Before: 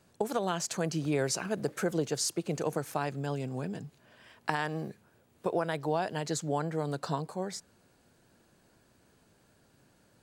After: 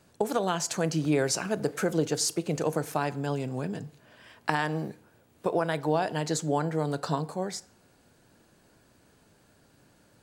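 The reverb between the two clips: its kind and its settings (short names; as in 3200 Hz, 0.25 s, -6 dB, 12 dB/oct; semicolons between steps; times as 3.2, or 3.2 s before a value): FDN reverb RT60 0.62 s, low-frequency decay 0.75×, high-frequency decay 0.65×, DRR 14.5 dB; gain +3.5 dB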